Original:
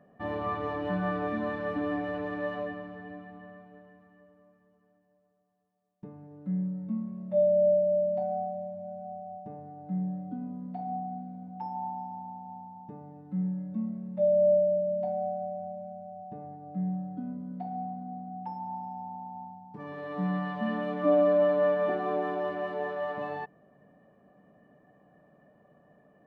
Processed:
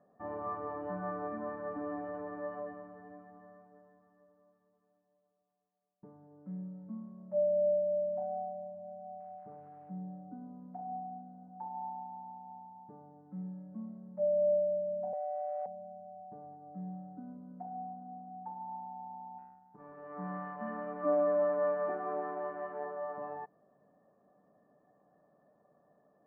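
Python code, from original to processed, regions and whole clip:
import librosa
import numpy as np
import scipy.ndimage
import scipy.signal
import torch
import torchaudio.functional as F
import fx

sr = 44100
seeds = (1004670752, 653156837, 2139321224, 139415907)

y = fx.chain(x, sr, fx.peak_eq(hz=260.0, db=-7.0, octaves=0.3),
    fx.sample_gate(floor_db=-51.5), at=(9.2, 9.91))
y = fx.chain(y, sr, fx.crossing_spikes(level_db=-38.0),
    fx.highpass(hz=440.0, slope=24),
    fx.env_flatten(amount_pct=100), at=(15.13, 15.66))
y = fx.chain(y, sr, fx.law_mismatch(coded='A'),
    fx.dynamic_eq(hz=1900.0, q=0.86, threshold_db=-46.0, ratio=4.0, max_db=5), at=(19.38, 22.85))
y = scipy.signal.sosfilt(scipy.signal.butter(4, 1400.0, 'lowpass', fs=sr, output='sos'), y)
y = fx.low_shelf(y, sr, hz=280.0, db=-10.5)
y = y * librosa.db_to_amplitude(-4.0)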